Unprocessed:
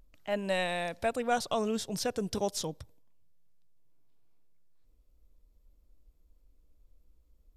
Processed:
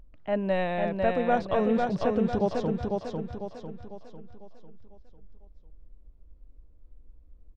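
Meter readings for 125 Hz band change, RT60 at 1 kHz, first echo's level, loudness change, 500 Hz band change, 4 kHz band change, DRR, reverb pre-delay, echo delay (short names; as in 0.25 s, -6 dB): +9.0 dB, none, -3.5 dB, +4.5 dB, +6.5 dB, -6.5 dB, none, none, 0.499 s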